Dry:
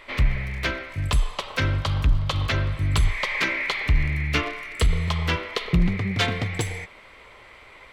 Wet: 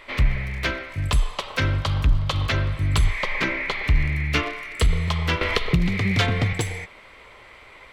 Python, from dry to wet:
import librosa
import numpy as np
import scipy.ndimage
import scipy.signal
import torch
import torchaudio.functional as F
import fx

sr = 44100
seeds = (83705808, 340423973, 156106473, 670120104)

y = fx.tilt_eq(x, sr, slope=-2.0, at=(3.23, 3.84))
y = fx.band_squash(y, sr, depth_pct=100, at=(5.41, 6.53))
y = y * 10.0 ** (1.0 / 20.0)